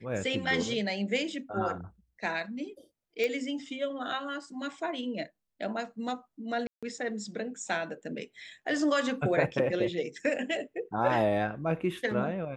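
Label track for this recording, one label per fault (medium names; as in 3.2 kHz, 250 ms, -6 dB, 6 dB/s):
3.240000	3.240000	pop -18 dBFS
6.670000	6.830000	dropout 156 ms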